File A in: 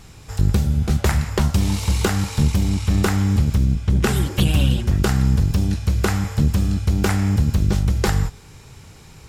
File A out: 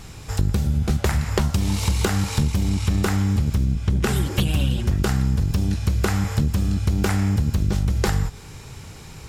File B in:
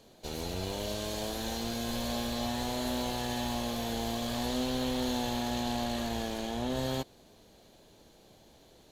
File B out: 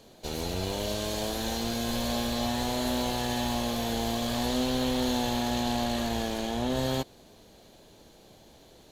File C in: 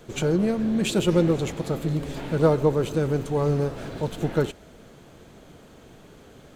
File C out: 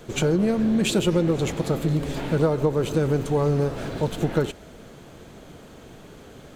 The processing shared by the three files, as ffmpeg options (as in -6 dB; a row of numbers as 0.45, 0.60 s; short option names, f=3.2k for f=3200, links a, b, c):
-af "acompressor=threshold=-21dB:ratio=6,volume=4dB"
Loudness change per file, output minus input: -2.5, +4.0, +1.0 LU